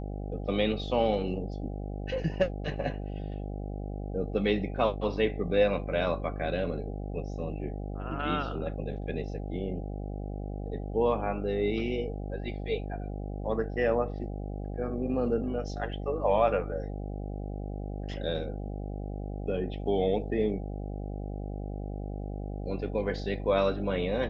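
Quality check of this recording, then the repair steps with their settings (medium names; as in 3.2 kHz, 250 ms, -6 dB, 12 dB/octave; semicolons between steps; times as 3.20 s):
buzz 50 Hz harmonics 16 -36 dBFS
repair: de-hum 50 Hz, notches 16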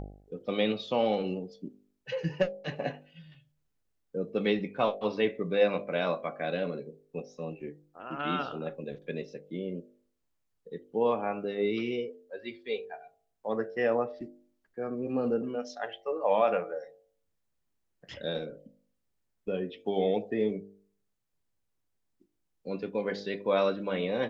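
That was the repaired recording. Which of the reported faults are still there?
nothing left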